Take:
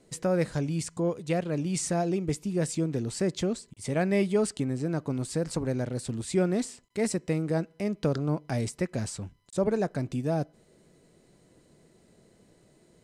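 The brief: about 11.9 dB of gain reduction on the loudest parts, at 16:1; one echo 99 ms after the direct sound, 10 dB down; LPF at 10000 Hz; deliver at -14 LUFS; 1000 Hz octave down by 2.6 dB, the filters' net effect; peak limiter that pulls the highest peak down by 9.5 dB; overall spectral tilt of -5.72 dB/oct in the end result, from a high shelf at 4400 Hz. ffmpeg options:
-af "lowpass=10k,equalizer=f=1k:t=o:g=-4,highshelf=f=4.4k:g=-6.5,acompressor=threshold=-32dB:ratio=16,alimiter=level_in=7.5dB:limit=-24dB:level=0:latency=1,volume=-7.5dB,aecho=1:1:99:0.316,volume=27dB"

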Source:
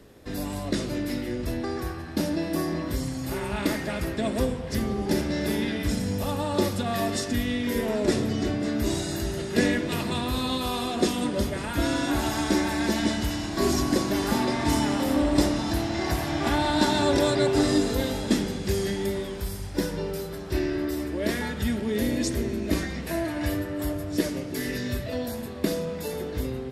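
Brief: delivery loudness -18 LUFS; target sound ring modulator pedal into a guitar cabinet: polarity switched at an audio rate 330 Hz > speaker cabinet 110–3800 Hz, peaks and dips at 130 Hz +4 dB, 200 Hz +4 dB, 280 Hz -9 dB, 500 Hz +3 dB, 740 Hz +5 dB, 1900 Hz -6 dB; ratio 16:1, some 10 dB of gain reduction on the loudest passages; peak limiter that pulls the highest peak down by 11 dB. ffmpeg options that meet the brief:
-af "acompressor=threshold=-27dB:ratio=16,alimiter=level_in=2.5dB:limit=-24dB:level=0:latency=1,volume=-2.5dB,aeval=exprs='val(0)*sgn(sin(2*PI*330*n/s))':c=same,highpass=110,equalizer=f=130:t=q:w=4:g=4,equalizer=f=200:t=q:w=4:g=4,equalizer=f=280:t=q:w=4:g=-9,equalizer=f=500:t=q:w=4:g=3,equalizer=f=740:t=q:w=4:g=5,equalizer=f=1.9k:t=q:w=4:g=-6,lowpass=f=3.8k:w=0.5412,lowpass=f=3.8k:w=1.3066,volume=17dB"

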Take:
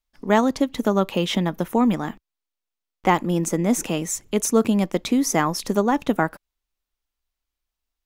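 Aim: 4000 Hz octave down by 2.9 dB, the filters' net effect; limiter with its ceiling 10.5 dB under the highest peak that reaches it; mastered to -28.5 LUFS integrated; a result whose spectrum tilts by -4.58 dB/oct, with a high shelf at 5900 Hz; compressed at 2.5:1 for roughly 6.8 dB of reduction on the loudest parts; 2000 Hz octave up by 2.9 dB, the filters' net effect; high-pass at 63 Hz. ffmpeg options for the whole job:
-af "highpass=63,equalizer=f=2k:t=o:g=5,equalizer=f=4k:t=o:g=-3.5,highshelf=f=5.9k:g=-7.5,acompressor=threshold=-24dB:ratio=2.5,volume=3.5dB,alimiter=limit=-18.5dB:level=0:latency=1"

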